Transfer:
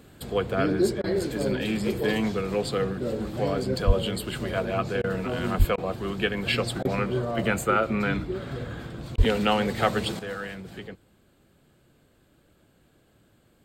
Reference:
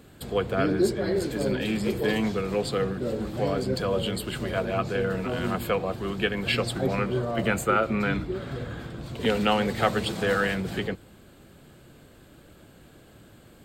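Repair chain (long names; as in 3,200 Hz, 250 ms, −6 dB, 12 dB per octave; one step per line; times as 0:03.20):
0:03.86–0:03.98: high-pass filter 140 Hz 24 dB per octave
0:05.58–0:05.70: high-pass filter 140 Hz 24 dB per octave
0:09.17–0:09.29: high-pass filter 140 Hz 24 dB per octave
repair the gap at 0:01.02/0:05.02/0:05.76/0:06.83/0:09.16, 18 ms
level 0 dB, from 0:10.19 +10 dB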